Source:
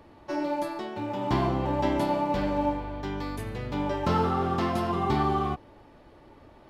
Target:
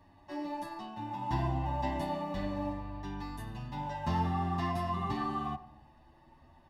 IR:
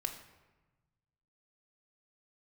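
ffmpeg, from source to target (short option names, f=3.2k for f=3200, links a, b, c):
-filter_complex "[0:a]aecho=1:1:1.1:0.73,asplit=2[a][b];[1:a]atrim=start_sample=2205,lowpass=1.9k,adelay=91[c];[b][c]afir=irnorm=-1:irlink=0,volume=-15dB[d];[a][d]amix=inputs=2:normalize=0,asplit=2[e][f];[f]adelay=8.1,afreqshift=0.42[g];[e][g]amix=inputs=2:normalize=1,volume=-6.5dB"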